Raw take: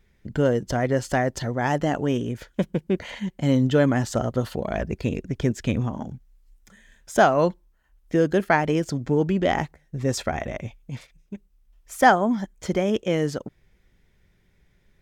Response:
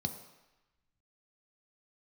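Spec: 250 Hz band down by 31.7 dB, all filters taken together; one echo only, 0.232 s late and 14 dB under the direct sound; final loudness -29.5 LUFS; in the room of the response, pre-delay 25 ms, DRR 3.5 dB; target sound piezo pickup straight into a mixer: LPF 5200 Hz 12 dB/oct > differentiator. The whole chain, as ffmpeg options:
-filter_complex "[0:a]equalizer=f=250:t=o:g=-4,aecho=1:1:232:0.2,asplit=2[a][b];[1:a]atrim=start_sample=2205,adelay=25[c];[b][c]afir=irnorm=-1:irlink=0,volume=-5dB[d];[a][d]amix=inputs=2:normalize=0,lowpass=5.2k,aderivative,volume=11dB"

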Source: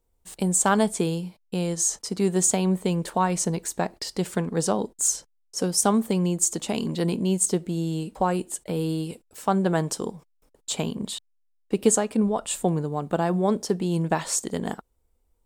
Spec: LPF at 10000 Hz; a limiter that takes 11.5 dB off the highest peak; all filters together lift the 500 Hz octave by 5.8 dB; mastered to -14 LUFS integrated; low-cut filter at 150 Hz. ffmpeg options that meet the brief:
-af "highpass=150,lowpass=10k,equalizer=f=500:t=o:g=7.5,volume=11.5dB,alimiter=limit=-2dB:level=0:latency=1"

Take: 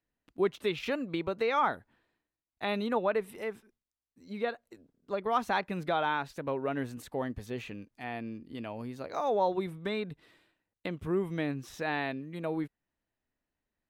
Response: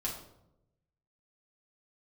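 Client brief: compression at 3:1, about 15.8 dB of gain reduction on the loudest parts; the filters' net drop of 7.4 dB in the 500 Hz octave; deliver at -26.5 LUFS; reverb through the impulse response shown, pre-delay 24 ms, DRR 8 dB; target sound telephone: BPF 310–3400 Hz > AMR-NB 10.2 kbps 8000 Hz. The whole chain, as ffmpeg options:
-filter_complex "[0:a]equalizer=f=500:t=o:g=-8.5,acompressor=threshold=-47dB:ratio=3,asplit=2[a][b];[1:a]atrim=start_sample=2205,adelay=24[c];[b][c]afir=irnorm=-1:irlink=0,volume=-10.5dB[d];[a][d]amix=inputs=2:normalize=0,highpass=310,lowpass=3.4k,volume=23.5dB" -ar 8000 -c:a libopencore_amrnb -b:a 10200

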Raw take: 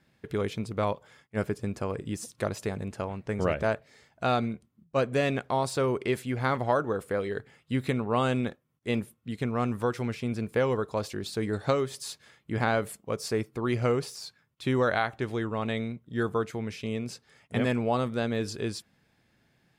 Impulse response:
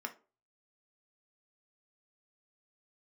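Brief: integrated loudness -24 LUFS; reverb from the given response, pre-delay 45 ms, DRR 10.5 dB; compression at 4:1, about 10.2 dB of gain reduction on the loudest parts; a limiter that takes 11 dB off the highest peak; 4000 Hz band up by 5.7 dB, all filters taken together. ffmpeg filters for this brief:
-filter_complex "[0:a]equalizer=f=4k:t=o:g=7,acompressor=threshold=-33dB:ratio=4,alimiter=level_in=6dB:limit=-24dB:level=0:latency=1,volume=-6dB,asplit=2[a][b];[1:a]atrim=start_sample=2205,adelay=45[c];[b][c]afir=irnorm=-1:irlink=0,volume=-11dB[d];[a][d]amix=inputs=2:normalize=0,volume=16.5dB"

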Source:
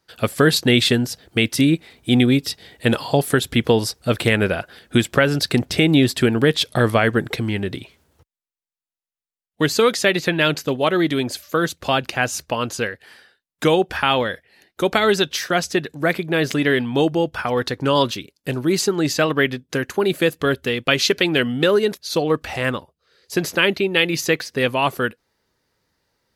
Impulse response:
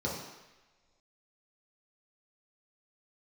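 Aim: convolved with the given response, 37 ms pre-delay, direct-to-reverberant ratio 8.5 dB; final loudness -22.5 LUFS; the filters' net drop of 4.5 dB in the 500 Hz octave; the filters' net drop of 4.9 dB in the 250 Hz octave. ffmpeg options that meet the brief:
-filter_complex "[0:a]equalizer=f=250:t=o:g=-5,equalizer=f=500:t=o:g=-4,asplit=2[a][b];[1:a]atrim=start_sample=2205,adelay=37[c];[b][c]afir=irnorm=-1:irlink=0,volume=-15dB[d];[a][d]amix=inputs=2:normalize=0,volume=-2dB"

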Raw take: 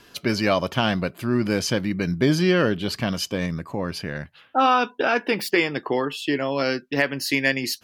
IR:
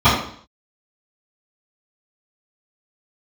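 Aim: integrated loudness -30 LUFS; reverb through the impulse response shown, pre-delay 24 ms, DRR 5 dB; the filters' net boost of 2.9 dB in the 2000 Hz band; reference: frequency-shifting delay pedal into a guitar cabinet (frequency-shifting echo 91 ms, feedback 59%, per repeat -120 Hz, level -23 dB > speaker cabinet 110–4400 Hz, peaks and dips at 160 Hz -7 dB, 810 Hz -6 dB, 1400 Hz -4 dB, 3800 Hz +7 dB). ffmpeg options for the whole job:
-filter_complex "[0:a]equalizer=f=2k:t=o:g=4.5,asplit=2[a][b];[1:a]atrim=start_sample=2205,adelay=24[c];[b][c]afir=irnorm=-1:irlink=0,volume=-31.5dB[d];[a][d]amix=inputs=2:normalize=0,asplit=5[e][f][g][h][i];[f]adelay=91,afreqshift=-120,volume=-23dB[j];[g]adelay=182,afreqshift=-240,volume=-27.6dB[k];[h]adelay=273,afreqshift=-360,volume=-32.2dB[l];[i]adelay=364,afreqshift=-480,volume=-36.7dB[m];[e][j][k][l][m]amix=inputs=5:normalize=0,highpass=110,equalizer=f=160:t=q:w=4:g=-7,equalizer=f=810:t=q:w=4:g=-6,equalizer=f=1.4k:t=q:w=4:g=-4,equalizer=f=3.8k:t=q:w=4:g=7,lowpass=f=4.4k:w=0.5412,lowpass=f=4.4k:w=1.3066,volume=-8.5dB"

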